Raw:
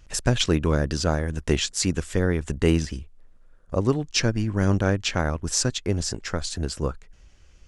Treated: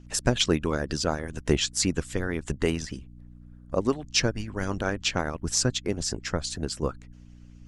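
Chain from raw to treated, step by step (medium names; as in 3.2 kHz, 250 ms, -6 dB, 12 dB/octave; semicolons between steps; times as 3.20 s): hum 60 Hz, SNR 15 dB; harmonic-percussive split harmonic -15 dB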